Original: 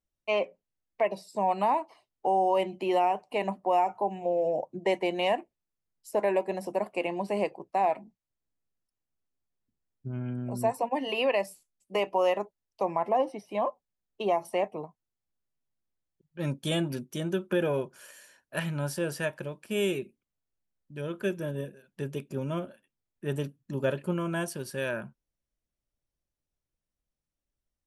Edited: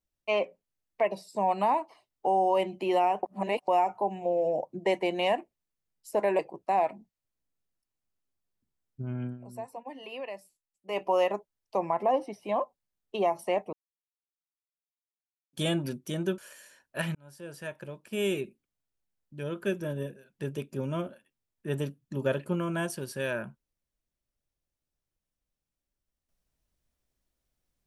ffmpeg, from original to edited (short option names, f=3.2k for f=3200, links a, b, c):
-filter_complex "[0:a]asplit=10[a][b][c][d][e][f][g][h][i][j];[a]atrim=end=3.232[k];[b]atrim=start=3.228:end=3.682,asetpts=PTS-STARTPTS,areverse[l];[c]atrim=start=3.678:end=6.392[m];[d]atrim=start=7.448:end=10.44,asetpts=PTS-STARTPTS,afade=t=out:st=2.872:d=0.12:silence=0.237137[n];[e]atrim=start=10.44:end=11.94,asetpts=PTS-STARTPTS,volume=-12.5dB[o];[f]atrim=start=11.94:end=14.79,asetpts=PTS-STARTPTS,afade=t=in:d=0.12:silence=0.237137,afade=t=out:st=2.846:d=0.004:c=hsin[p];[g]atrim=start=14.79:end=16.59,asetpts=PTS-STARTPTS,volume=0[q];[h]atrim=start=16.59:end=17.442,asetpts=PTS-STARTPTS,afade=t=in:d=0.004:c=hsin[r];[i]atrim=start=17.958:end=18.73,asetpts=PTS-STARTPTS,afade=t=out:st=0.768:d=0.004:c=hsin[s];[j]atrim=start=18.73,asetpts=PTS-STARTPTS,afade=t=in:d=1.25[t];[k][l]acrossfade=d=0.004:c1=hsin:c2=hsin[u];[u][m]acrossfade=d=0.004:c1=hsin:c2=hsin[v];[n][o][p][q][r]concat=n=5:v=0:a=1[w];[v][w]acrossfade=d=0.004:c1=hsin:c2=hsin[x];[s][t]concat=n=2:v=0:a=1[y];[x][y]acrossfade=d=0.004:c1=hsin:c2=hsin"